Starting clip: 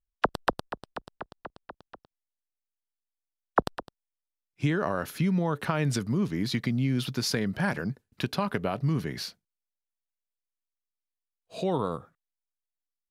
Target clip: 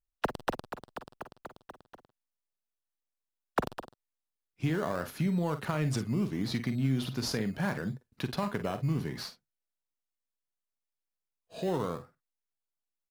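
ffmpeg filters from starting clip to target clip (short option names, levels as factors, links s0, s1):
-filter_complex "[0:a]asplit=2[s0][s1];[s1]acrusher=samples=15:mix=1:aa=0.000001:lfo=1:lforange=9:lforate=0.71,volume=0.335[s2];[s0][s2]amix=inputs=2:normalize=0,asoftclip=type=tanh:threshold=0.251,aecho=1:1:45|53:0.251|0.188,volume=0.531"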